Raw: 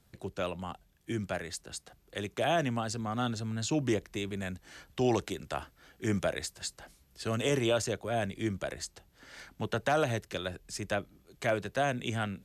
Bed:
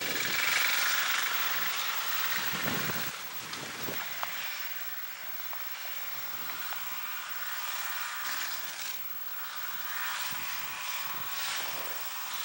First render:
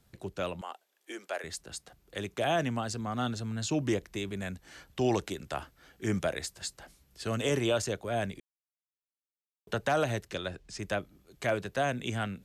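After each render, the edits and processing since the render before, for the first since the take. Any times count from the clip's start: 0.61–1.44 s: high-pass 400 Hz 24 dB/octave; 8.40–9.67 s: mute; 10.27–10.78 s: low-pass 11 kHz -> 5.7 kHz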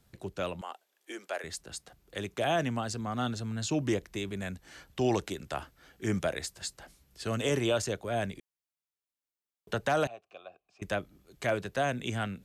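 10.07–10.82 s: vowel filter a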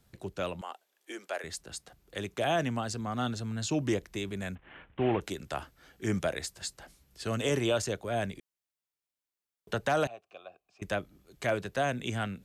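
4.55–5.21 s: CVSD coder 16 kbps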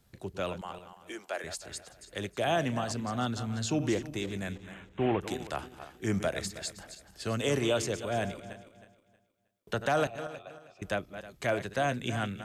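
backward echo that repeats 158 ms, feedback 52%, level -11 dB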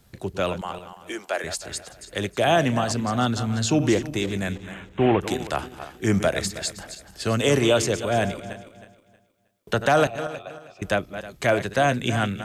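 trim +9 dB

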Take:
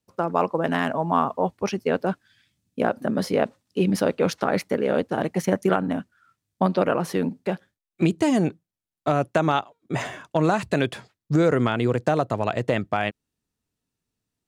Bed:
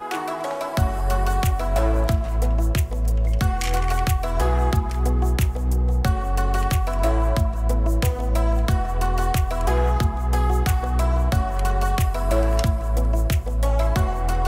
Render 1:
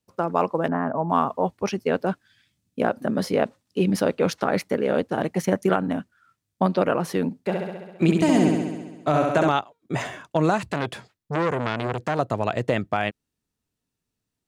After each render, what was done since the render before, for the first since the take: 0.68–1.10 s: low-pass 1.4 kHz 24 dB/octave; 7.42–9.49 s: flutter echo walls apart 11.4 m, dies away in 1.2 s; 10.58–12.19 s: transformer saturation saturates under 1.4 kHz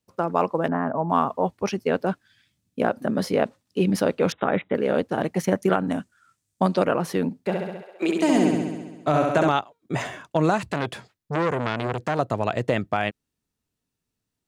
4.32–4.75 s: brick-wall FIR low-pass 3.9 kHz; 5.87–6.85 s: peaking EQ 7.8 kHz +10.5 dB 1.1 oct; 7.81–8.51 s: high-pass 460 Hz -> 170 Hz 24 dB/octave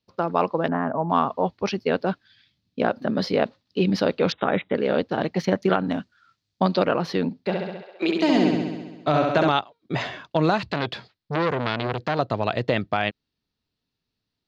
resonant high shelf 6.3 kHz -14 dB, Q 3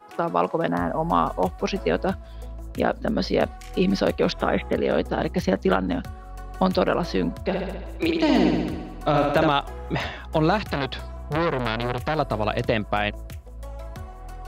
add bed -16.5 dB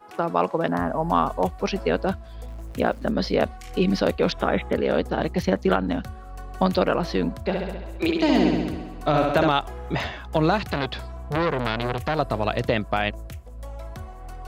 2.48–3.09 s: small samples zeroed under -45.5 dBFS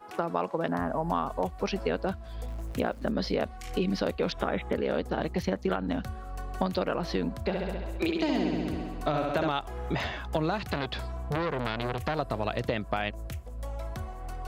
compression 3:1, threshold -27 dBFS, peak gain reduction 10 dB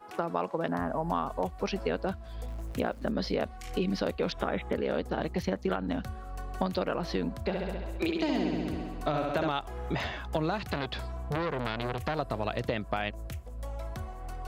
trim -1.5 dB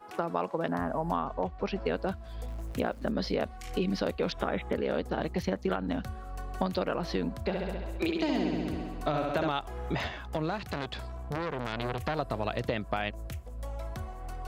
1.16–1.86 s: distance through air 160 m; 10.08–11.73 s: valve stage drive 22 dB, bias 0.55

